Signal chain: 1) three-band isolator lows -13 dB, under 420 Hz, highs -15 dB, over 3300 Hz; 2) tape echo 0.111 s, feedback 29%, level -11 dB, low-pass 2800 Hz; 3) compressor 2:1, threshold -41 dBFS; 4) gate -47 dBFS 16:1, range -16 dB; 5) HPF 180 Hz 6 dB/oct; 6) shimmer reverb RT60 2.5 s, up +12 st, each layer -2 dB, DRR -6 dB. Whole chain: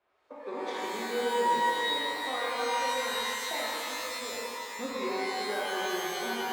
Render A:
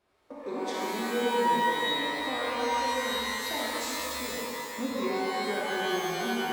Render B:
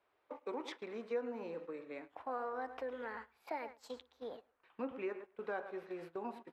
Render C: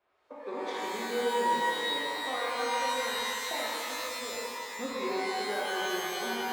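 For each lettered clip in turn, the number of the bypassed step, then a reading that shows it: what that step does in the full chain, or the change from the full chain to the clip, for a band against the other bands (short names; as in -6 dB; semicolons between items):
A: 1, 250 Hz band +5.5 dB; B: 6, 4 kHz band -13.5 dB; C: 2, momentary loudness spread change -1 LU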